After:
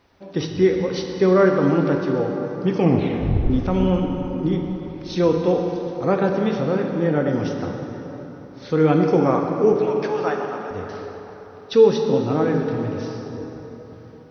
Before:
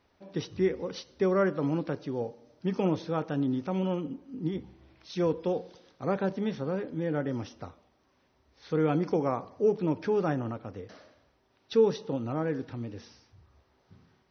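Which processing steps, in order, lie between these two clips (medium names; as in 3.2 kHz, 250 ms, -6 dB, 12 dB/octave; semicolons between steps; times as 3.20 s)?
2.78 s: tape stop 0.72 s; 9.73–10.71 s: high-pass 700 Hz 12 dB/octave; plate-style reverb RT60 4.1 s, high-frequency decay 0.6×, DRR 2 dB; trim +8.5 dB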